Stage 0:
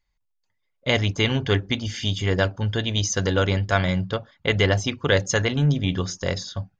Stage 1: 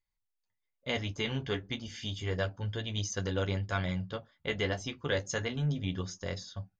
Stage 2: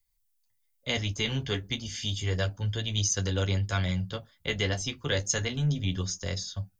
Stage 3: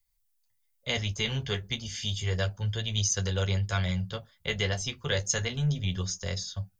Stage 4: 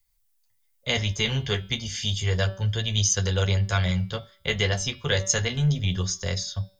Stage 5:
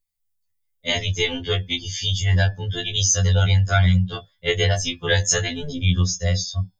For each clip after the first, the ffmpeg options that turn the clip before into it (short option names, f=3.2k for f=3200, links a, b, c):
-af "flanger=delay=9.9:depth=4.5:regen=-33:speed=0.31:shape=sinusoidal,volume=-8dB"
-filter_complex "[0:a]lowshelf=f=110:g=11,acrossover=split=210|420|1300[a][b][c][d];[d]crystalizer=i=3.5:c=0[e];[a][b][c][e]amix=inputs=4:normalize=0"
-af "equalizer=f=290:t=o:w=0.25:g=-15"
-af "bandreject=f=191.5:t=h:w=4,bandreject=f=383:t=h:w=4,bandreject=f=574.5:t=h:w=4,bandreject=f=766:t=h:w=4,bandreject=f=957.5:t=h:w=4,bandreject=f=1.149k:t=h:w=4,bandreject=f=1.3405k:t=h:w=4,bandreject=f=1.532k:t=h:w=4,bandreject=f=1.7235k:t=h:w=4,bandreject=f=1.915k:t=h:w=4,bandreject=f=2.1065k:t=h:w=4,bandreject=f=2.298k:t=h:w=4,bandreject=f=2.4895k:t=h:w=4,bandreject=f=2.681k:t=h:w=4,bandreject=f=2.8725k:t=h:w=4,bandreject=f=3.064k:t=h:w=4,bandreject=f=3.2555k:t=h:w=4,bandreject=f=3.447k:t=h:w=4,bandreject=f=3.6385k:t=h:w=4,bandreject=f=3.83k:t=h:w=4,bandreject=f=4.0215k:t=h:w=4,bandreject=f=4.213k:t=h:w=4,bandreject=f=4.4045k:t=h:w=4,bandreject=f=4.596k:t=h:w=4,bandreject=f=4.7875k:t=h:w=4,bandreject=f=4.979k:t=h:w=4,bandreject=f=5.1705k:t=h:w=4,bandreject=f=5.362k:t=h:w=4,volume=5dB"
-af "afftdn=nr=14:nf=-36,afftfilt=real='re*2*eq(mod(b,4),0)':imag='im*2*eq(mod(b,4),0)':win_size=2048:overlap=0.75,volume=6.5dB"